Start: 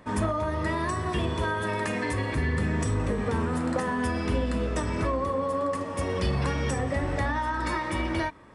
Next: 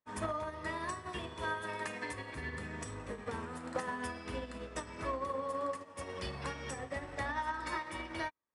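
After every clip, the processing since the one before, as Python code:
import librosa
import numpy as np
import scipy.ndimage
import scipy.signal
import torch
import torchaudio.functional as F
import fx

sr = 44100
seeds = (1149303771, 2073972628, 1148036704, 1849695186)

y = fx.low_shelf(x, sr, hz=390.0, db=-10.0)
y = fx.upward_expand(y, sr, threshold_db=-52.0, expansion=2.5)
y = F.gain(torch.from_numpy(y), -3.0).numpy()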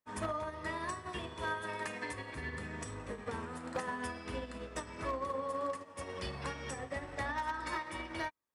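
y = 10.0 ** (-28.0 / 20.0) * (np.abs((x / 10.0 ** (-28.0 / 20.0) + 3.0) % 4.0 - 2.0) - 1.0)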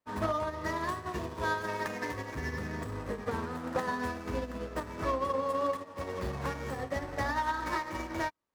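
y = scipy.signal.medfilt(x, 15)
y = F.gain(torch.from_numpy(y), 6.5).numpy()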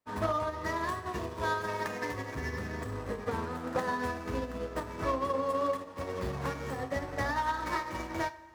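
y = fx.rev_double_slope(x, sr, seeds[0], early_s=0.35, late_s=2.6, knee_db=-15, drr_db=11.5)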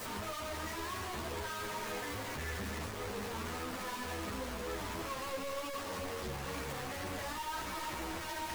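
y = np.sign(x) * np.sqrt(np.mean(np.square(x)))
y = fx.ensemble(y, sr)
y = F.gain(torch.from_numpy(y), -3.0).numpy()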